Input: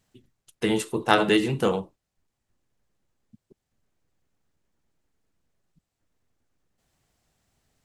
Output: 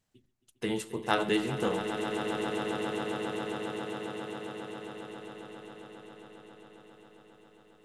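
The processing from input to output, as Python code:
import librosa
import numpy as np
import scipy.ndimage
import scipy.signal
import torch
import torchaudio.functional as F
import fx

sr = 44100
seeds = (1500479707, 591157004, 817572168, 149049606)

y = fx.echo_swell(x, sr, ms=135, loudest=8, wet_db=-11.5)
y = F.gain(torch.from_numpy(y), -8.0).numpy()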